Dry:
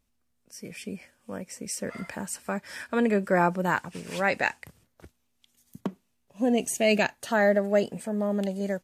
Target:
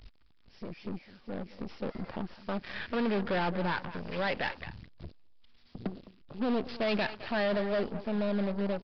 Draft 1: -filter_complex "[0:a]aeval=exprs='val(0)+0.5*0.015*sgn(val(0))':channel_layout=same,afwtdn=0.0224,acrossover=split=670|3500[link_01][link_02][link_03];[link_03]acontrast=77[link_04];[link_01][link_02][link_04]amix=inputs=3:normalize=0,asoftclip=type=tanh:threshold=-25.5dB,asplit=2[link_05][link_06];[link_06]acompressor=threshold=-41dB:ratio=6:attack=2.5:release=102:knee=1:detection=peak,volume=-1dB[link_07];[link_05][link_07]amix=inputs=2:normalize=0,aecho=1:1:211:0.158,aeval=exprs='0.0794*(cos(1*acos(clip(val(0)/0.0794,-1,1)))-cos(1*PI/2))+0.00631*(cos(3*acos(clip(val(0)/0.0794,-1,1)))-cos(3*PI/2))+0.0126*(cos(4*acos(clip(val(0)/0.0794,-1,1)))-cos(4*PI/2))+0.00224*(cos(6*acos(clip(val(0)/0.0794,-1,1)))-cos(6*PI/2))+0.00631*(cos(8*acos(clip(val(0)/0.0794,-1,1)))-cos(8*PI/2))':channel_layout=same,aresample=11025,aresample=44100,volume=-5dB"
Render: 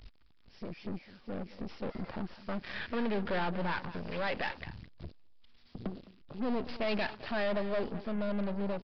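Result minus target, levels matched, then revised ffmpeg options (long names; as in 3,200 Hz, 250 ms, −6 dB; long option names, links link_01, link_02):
soft clipping: distortion +12 dB
-filter_complex "[0:a]aeval=exprs='val(0)+0.5*0.015*sgn(val(0))':channel_layout=same,afwtdn=0.0224,acrossover=split=670|3500[link_01][link_02][link_03];[link_03]acontrast=77[link_04];[link_01][link_02][link_04]amix=inputs=3:normalize=0,asoftclip=type=tanh:threshold=-13.5dB,asplit=2[link_05][link_06];[link_06]acompressor=threshold=-41dB:ratio=6:attack=2.5:release=102:knee=1:detection=peak,volume=-1dB[link_07];[link_05][link_07]amix=inputs=2:normalize=0,aecho=1:1:211:0.158,aeval=exprs='0.0794*(cos(1*acos(clip(val(0)/0.0794,-1,1)))-cos(1*PI/2))+0.00631*(cos(3*acos(clip(val(0)/0.0794,-1,1)))-cos(3*PI/2))+0.0126*(cos(4*acos(clip(val(0)/0.0794,-1,1)))-cos(4*PI/2))+0.00224*(cos(6*acos(clip(val(0)/0.0794,-1,1)))-cos(6*PI/2))+0.00631*(cos(8*acos(clip(val(0)/0.0794,-1,1)))-cos(8*PI/2))':channel_layout=same,aresample=11025,aresample=44100,volume=-5dB"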